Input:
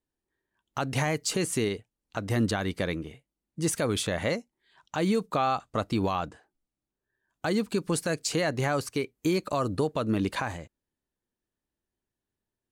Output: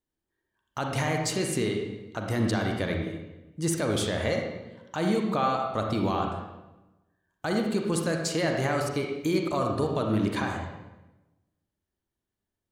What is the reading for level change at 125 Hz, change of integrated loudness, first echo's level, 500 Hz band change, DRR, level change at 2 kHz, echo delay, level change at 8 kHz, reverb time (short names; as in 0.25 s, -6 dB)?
+1.5 dB, +1.0 dB, none, +1.0 dB, 1.5 dB, +0.5 dB, none, -1.5 dB, 1.0 s